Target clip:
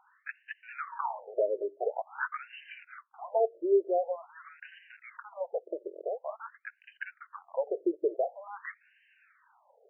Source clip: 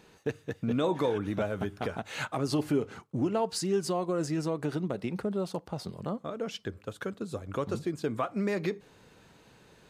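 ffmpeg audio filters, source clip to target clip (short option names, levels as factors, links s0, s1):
-filter_complex "[0:a]asettb=1/sr,asplit=3[s0][s1][s2];[s0]atrim=end=3.914[s3];[s1]atrim=start=3.91:end=5.89,asetpts=PTS-STARTPTS,afade=t=in:d=0.004:c=qsin,afade=t=out:st=1.976:d=0.004:c=qsin,tiltshelf=f=630:g=5.5[s4];[s2]atrim=start=5.886[s5];[s3][s4]acrossfade=d=0.004:c1=hsin:c2=qsin[s6];[s6][s5]acrossfade=d=0.004:c1=qsin:c2=hsin,asplit=2[s7][s8];[s8]aeval=exprs='val(0)*gte(abs(val(0)),0.0168)':c=same,volume=0.501[s9];[s7][s9]amix=inputs=2:normalize=0,afftfilt=real='re*between(b*sr/1024,440*pow(2200/440,0.5+0.5*sin(2*PI*0.47*pts/sr))/1.41,440*pow(2200/440,0.5+0.5*sin(2*PI*0.47*pts/sr))*1.41)':imag='im*between(b*sr/1024,440*pow(2200/440,0.5+0.5*sin(2*PI*0.47*pts/sr))/1.41,440*pow(2200/440,0.5+0.5*sin(2*PI*0.47*pts/sr))*1.41)':win_size=1024:overlap=0.75,volume=1.19"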